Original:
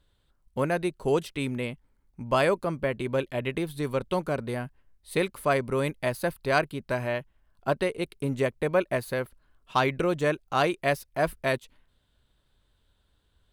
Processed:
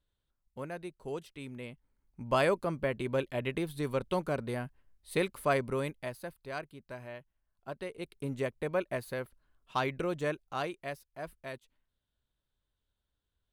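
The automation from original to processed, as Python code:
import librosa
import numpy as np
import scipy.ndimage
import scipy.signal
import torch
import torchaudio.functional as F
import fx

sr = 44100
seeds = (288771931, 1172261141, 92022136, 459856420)

y = fx.gain(x, sr, db=fx.line((1.44, -14.0), (2.31, -4.0), (5.65, -4.0), (6.35, -15.5), (7.71, -15.5), (8.18, -7.5), (10.3, -7.5), (11.06, -16.0)))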